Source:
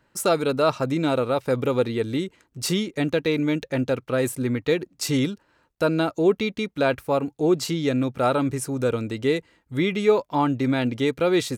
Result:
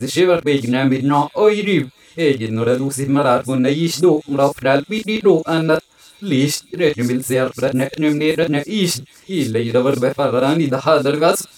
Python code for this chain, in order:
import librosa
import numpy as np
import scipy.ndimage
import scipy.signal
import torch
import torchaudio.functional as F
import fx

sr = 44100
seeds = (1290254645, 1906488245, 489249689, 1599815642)

y = np.flip(x).copy()
y = fx.doubler(y, sr, ms=36.0, db=-7)
y = fx.echo_wet_highpass(y, sr, ms=528, feedback_pct=67, hz=5400.0, wet_db=-11.0)
y = F.gain(torch.from_numpy(y), 6.0).numpy()